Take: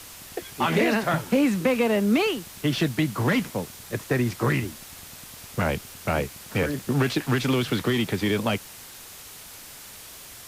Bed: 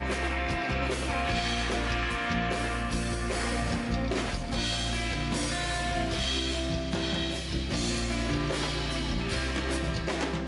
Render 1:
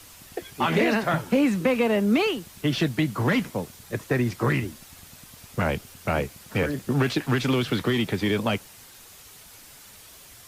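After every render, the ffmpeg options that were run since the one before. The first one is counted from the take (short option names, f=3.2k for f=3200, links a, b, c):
-af "afftdn=nr=6:nf=-44"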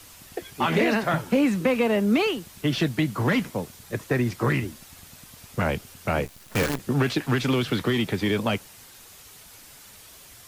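-filter_complex "[0:a]asettb=1/sr,asplit=3[a][b][c];[a]atrim=end=6.254[d];[b]atrim=start=6.25:end=6.8,asetpts=PTS-STARTPTS,afade=t=in:d=0.004:c=qsin,afade=t=out:st=0.546:d=0.004:c=qsin,acrusher=bits=5:dc=4:mix=0:aa=0.000001[e];[c]atrim=start=6.796[f];[d][e]acrossfade=d=0.004:c1=hsin:c2=qsin[g];[g][f]acrossfade=d=0.004:c1=qsin:c2=hsin"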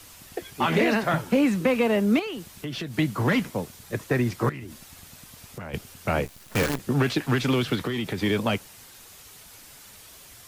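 -filter_complex "[0:a]asettb=1/sr,asplit=3[a][b][c];[a]atrim=end=2.194[d];[b]atrim=start=2.19:end=2.95,asetpts=PTS-STARTPTS,afade=t=in:d=0.004:c=qsin,afade=t=out:st=0.756:d=0.004:c=qsin,acompressor=threshold=-30dB:ratio=4:attack=3.2:release=140:knee=1:detection=peak[e];[c]atrim=start=2.946[f];[d][e]acrossfade=d=0.004:c1=hsin:c2=qsin[g];[g][f]acrossfade=d=0.004:c1=qsin:c2=hsin,asettb=1/sr,asplit=3[h][i][j];[h]atrim=end=4.494[k];[i]atrim=start=4.49:end=5.74,asetpts=PTS-STARTPTS,afade=t=in:d=0.004:c=qsin,afade=t=out:st=1.246:d=0.004:c=qsin,acompressor=threshold=-33dB:ratio=10:attack=3.2:release=140:knee=1:detection=peak[l];[j]atrim=start=5.736[m];[k][l]acrossfade=d=0.004:c1=hsin:c2=qsin[n];[n][m]acrossfade=d=0.004:c1=qsin:c2=hsin,asettb=1/sr,asplit=3[o][p][q];[o]atrim=end=7.754[r];[p]atrim=start=7.75:end=8.18,asetpts=PTS-STARTPTS,afade=t=in:d=0.004:c=qsin,afade=t=out:st=0.426:d=0.004:c=qsin,acompressor=threshold=-24dB:ratio=6:attack=3.2:release=140:knee=1:detection=peak[s];[q]atrim=start=8.176[t];[r][s]acrossfade=d=0.004:c1=hsin:c2=qsin[u];[u][t]acrossfade=d=0.004:c1=qsin:c2=hsin"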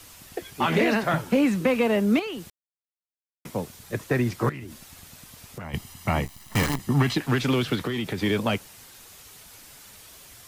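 -filter_complex "[0:a]asettb=1/sr,asplit=3[a][b][c];[a]atrim=end=5.644[d];[b]atrim=start=5.64:end=7.18,asetpts=PTS-STARTPTS,afade=t=in:d=0.004:c=qsin,afade=t=out:st=1.536:d=0.004:c=qsin,aecho=1:1:1:0.56,atrim=end_sample=67914[e];[c]atrim=start=7.176[f];[d][e]acrossfade=d=0.004:c1=hsin:c2=qsin[g];[g][f]acrossfade=d=0.004:c1=qsin:c2=hsin,asplit=3[h][i][j];[h]atrim=end=2.5,asetpts=PTS-STARTPTS,afade=t=out:st=2.496:d=0.004:c=hsin[k];[i]atrim=start=2.5:end=3.45,asetpts=PTS-STARTPTS,volume=0[l];[j]atrim=start=3.45,asetpts=PTS-STARTPTS,afade=t=in:d=0.004:c=hsin[m];[k][l][m]concat=n=3:v=0:a=1"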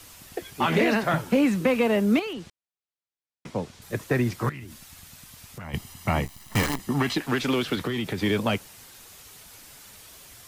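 -filter_complex "[0:a]asettb=1/sr,asplit=3[a][b][c];[a]atrim=end=2.334[d];[b]atrim=start=2.33:end=3.82,asetpts=PTS-STARTPTS,afade=t=in:d=0.004:c=qsin,afade=t=out:st=1.486:d=0.004:c=qsin,lowpass=6k[e];[c]atrim=start=3.816[f];[d][e]acrossfade=d=0.004:c1=hsin:c2=qsin[g];[g][f]acrossfade=d=0.004:c1=qsin:c2=hsin,asettb=1/sr,asplit=3[h][i][j];[h]atrim=end=4.394[k];[i]atrim=start=4.39:end=5.68,asetpts=PTS-STARTPTS,afade=t=in:d=0.004:c=qsin,afade=t=out:st=1.286:d=0.004:c=qsin,equalizer=f=430:w=0.73:g=-5.5[l];[j]atrim=start=5.676[m];[k][l]acrossfade=d=0.004:c1=hsin:c2=qsin[n];[n][m]acrossfade=d=0.004:c1=qsin:c2=hsin,asettb=1/sr,asplit=3[o][p][q];[o]atrim=end=6.614[r];[p]atrim=start=6.61:end=7.77,asetpts=PTS-STARTPTS,afade=t=in:d=0.004:c=qsin,afade=t=out:st=1.156:d=0.004:c=qsin,equalizer=f=120:w=1.5:g=-8.5[s];[q]atrim=start=7.766[t];[r][s]acrossfade=d=0.004:c1=hsin:c2=qsin[u];[u][t]acrossfade=d=0.004:c1=qsin:c2=hsin"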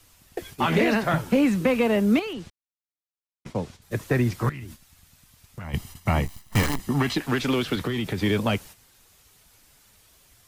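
-af "agate=range=-10dB:threshold=-43dB:ratio=16:detection=peak,lowshelf=f=89:g=9"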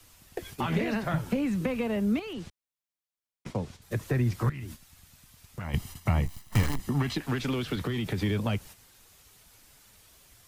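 -filter_complex "[0:a]acrossover=split=160[a][b];[b]acompressor=threshold=-33dB:ratio=2.5[c];[a][c]amix=inputs=2:normalize=0"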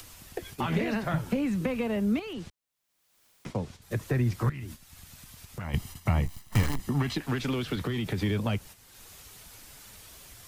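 -af "acompressor=mode=upward:threshold=-40dB:ratio=2.5"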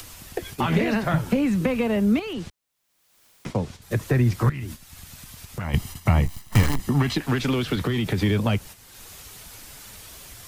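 -af "volume=6.5dB"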